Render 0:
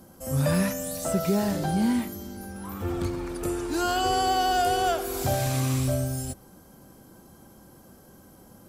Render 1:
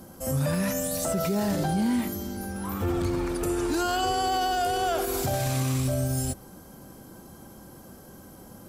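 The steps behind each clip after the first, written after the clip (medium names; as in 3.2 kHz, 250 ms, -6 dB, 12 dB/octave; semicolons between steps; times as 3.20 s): peak limiter -23 dBFS, peak gain reduction 9.5 dB; trim +4.5 dB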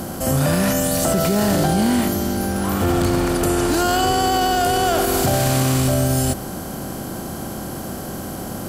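spectral levelling over time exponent 0.6; trim +5.5 dB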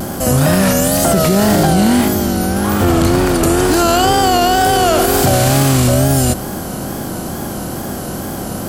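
wow and flutter 87 cents; trim +6 dB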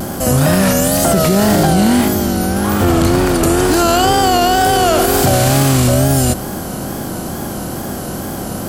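no audible change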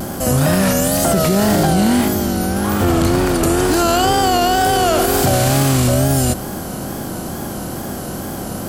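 added noise pink -52 dBFS; trim -2.5 dB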